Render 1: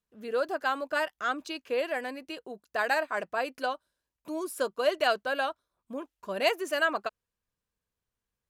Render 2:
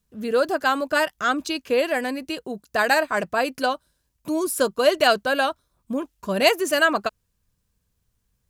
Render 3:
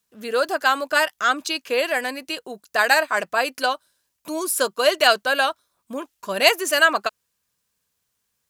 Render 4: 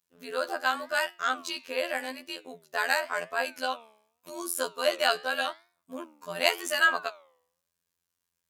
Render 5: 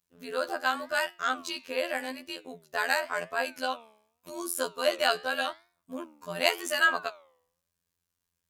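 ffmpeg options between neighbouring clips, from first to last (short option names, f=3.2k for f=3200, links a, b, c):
-af "bass=f=250:g=12,treble=f=4k:g=6,volume=7.5dB"
-af "highpass=f=900:p=1,volume=4.5dB"
-af "afftfilt=real='hypot(re,im)*cos(PI*b)':imag='0':win_size=2048:overlap=0.75,flanger=delay=8.5:depth=5.6:regen=87:speed=0.87:shape=sinusoidal,volume=-1dB"
-af "lowshelf=f=180:g=10,volume=-1dB"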